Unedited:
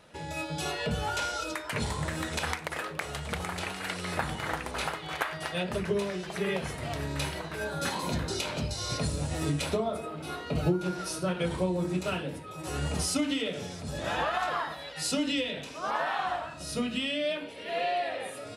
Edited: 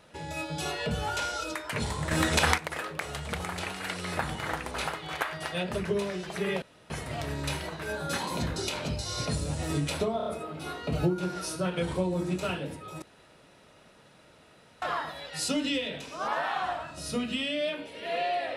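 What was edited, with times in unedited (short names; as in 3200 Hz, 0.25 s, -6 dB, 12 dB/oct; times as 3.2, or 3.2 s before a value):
2.11–2.58 gain +8 dB
6.62 insert room tone 0.28 s
9.89 stutter 0.03 s, 4 plays
12.65–14.45 room tone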